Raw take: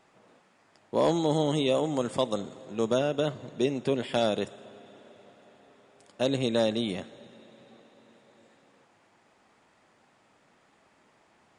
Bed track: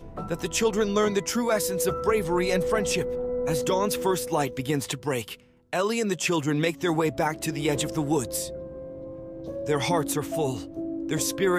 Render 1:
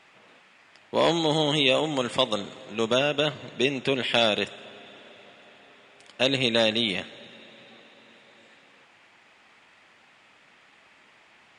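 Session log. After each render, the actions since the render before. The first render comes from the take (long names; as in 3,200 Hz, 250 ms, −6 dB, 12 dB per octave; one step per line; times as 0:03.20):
parametric band 2,600 Hz +14 dB 1.9 octaves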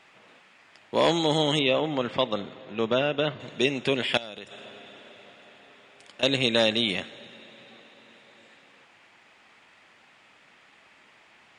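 0:01.59–0:03.40: high-frequency loss of the air 210 metres
0:04.17–0:06.23: downward compressor 5 to 1, threshold −37 dBFS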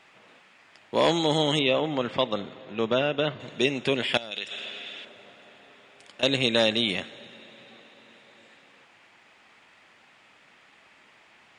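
0:04.31–0:05.05: meter weighting curve D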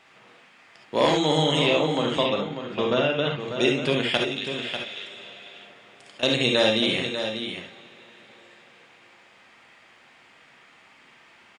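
single-tap delay 594 ms −8.5 dB
reverb whose tail is shaped and stops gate 90 ms rising, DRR 1.5 dB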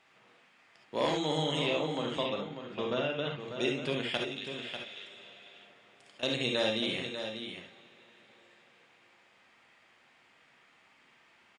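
level −9.5 dB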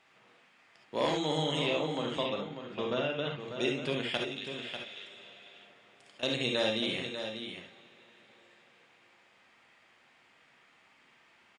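no processing that can be heard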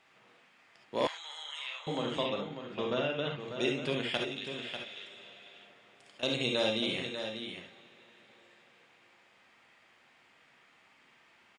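0:01.07–0:01.87: four-pole ladder high-pass 1,100 Hz, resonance 35%
0:06.23–0:06.97: notch filter 1,800 Hz, Q 7.2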